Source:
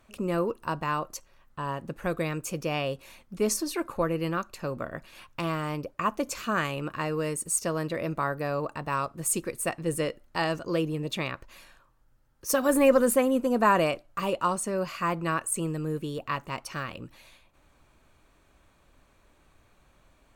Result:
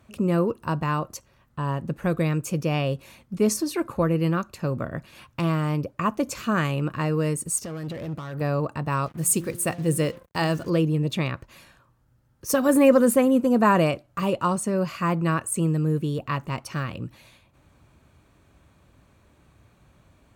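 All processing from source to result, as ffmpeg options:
-filter_complex "[0:a]asettb=1/sr,asplit=3[a][b][c];[a]atrim=end=7.584[d];[b]atrim=start=7.58:end=8.41,asetpts=PTS-STARTPTS,afade=t=in:d=0.004:c=qsin,afade=t=out:st=0.826:d=0.004:c=qsin,acompressor=threshold=-30dB:ratio=12:attack=3.2:release=140:knee=1:detection=peak,volume=35.5dB,asoftclip=hard,volume=-35.5dB[e];[c]atrim=start=8.406[f];[d][e]acrossfade=d=0.004:c1=hsin:c2=qsin[g];[g][f]acrossfade=d=0.004:c1=qsin:c2=hsin,asettb=1/sr,asplit=3[h][i][j];[h]atrim=end=9.064[k];[i]atrim=start=9.06:end=10.7,asetpts=PTS-STARTPTS,afade=t=in:d=0.004:c=qsin,afade=t=out:st=1.636:d=0.004:c=qsin,highshelf=f=6.3k:g=6.5,bandreject=f=174.1:t=h:w=4,bandreject=f=348.2:t=h:w=4,bandreject=f=522.3:t=h:w=4,bandreject=f=696.4:t=h:w=4,bandreject=f=870.5:t=h:w=4,bandreject=f=1.0446k:t=h:w=4,bandreject=f=1.2187k:t=h:w=4,bandreject=f=1.3928k:t=h:w=4,bandreject=f=1.5669k:t=h:w=4,bandreject=f=1.741k:t=h:w=4,acrusher=bits=7:mix=0:aa=0.5[l];[j]atrim=start=10.696[m];[k][l]acrossfade=d=0.004:c1=hsin:c2=qsin[n];[n][m]acrossfade=d=0.004:c1=qsin:c2=hsin,highpass=55,equalizer=f=110:t=o:w=2.6:g=10.5,volume=1dB"

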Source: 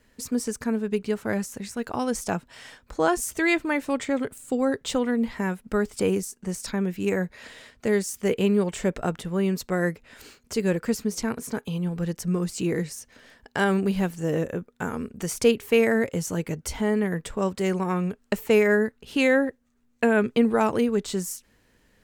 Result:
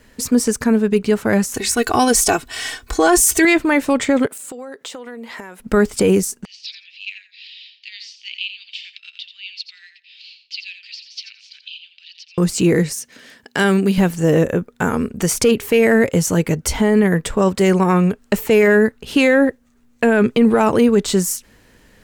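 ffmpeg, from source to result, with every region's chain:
-filter_complex "[0:a]asettb=1/sr,asplit=3[a][b][c];[a]atrim=end=1.544[d];[b]atrim=start=1.54:end=3.45,asetpts=PTS-STARTPTS,afade=t=in:d=0.004:c=qsin,afade=t=out:st=1.906:d=0.004:c=qsin,highshelf=f=2.3k:g=8,aecho=1:1:2.7:0.84,atrim=end_sample=84231[e];[c]atrim=start=3.446[f];[d][e]acrossfade=d=0.004:c1=hsin:c2=qsin[g];[g][f]acrossfade=d=0.004:c1=qsin:c2=hsin,asettb=1/sr,asplit=3[h][i][j];[h]atrim=end=4.264[k];[i]atrim=start=4.26:end=5.6,asetpts=PTS-STARTPTS,afade=t=in:d=0.004:c=qsin,afade=t=out:st=1.336:d=0.004:c=qsin,highpass=380,acompressor=threshold=-40dB:ratio=16:attack=3.2:release=140:knee=1:detection=peak[l];[j]atrim=start=5.596[m];[k][l]acrossfade=d=0.004:c1=hsin:c2=qsin[n];[n][m]acrossfade=d=0.004:c1=qsin:c2=hsin,asettb=1/sr,asplit=3[o][p][q];[o]atrim=end=6.454[r];[p]atrim=start=6.45:end=12.38,asetpts=PTS-STARTPTS,afade=t=in:d=0.004:c=qsin,afade=t=out:st=5.926:d=0.004:c=qsin,asuperpass=centerf=3500:order=8:qfactor=1.5,aecho=1:1:86|172:0.316|0.0506,atrim=end_sample=261513[s];[q]atrim=start=12.376[t];[r][s]acrossfade=d=0.004:c1=hsin:c2=qsin[u];[u][t]acrossfade=d=0.004:c1=qsin:c2=hsin,asettb=1/sr,asplit=3[v][w][x];[v]atrim=end=12.934[y];[w]atrim=start=12.93:end=13.98,asetpts=PTS-STARTPTS,afade=t=in:d=0.004:c=qsin,afade=t=out:st=1.046:d=0.004:c=qsin,highpass=180,equalizer=f=780:t=o:w=1.9:g=-8[z];[x]atrim=start=13.976[aa];[y][z]acrossfade=d=0.004:c1=hsin:c2=qsin[ab];[ab][aa]acrossfade=d=0.004:c1=qsin:c2=hsin,acontrast=53,alimiter=limit=-11dB:level=0:latency=1:release=11,volume=5.5dB"

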